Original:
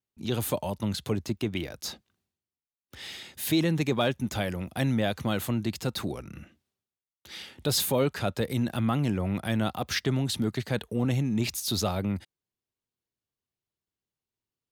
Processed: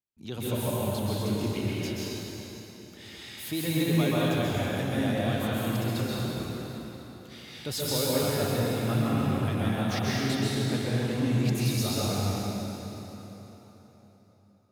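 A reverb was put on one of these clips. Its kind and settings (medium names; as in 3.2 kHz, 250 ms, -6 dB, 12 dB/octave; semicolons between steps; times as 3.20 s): plate-style reverb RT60 4 s, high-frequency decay 0.8×, pre-delay 115 ms, DRR -8 dB; trim -8 dB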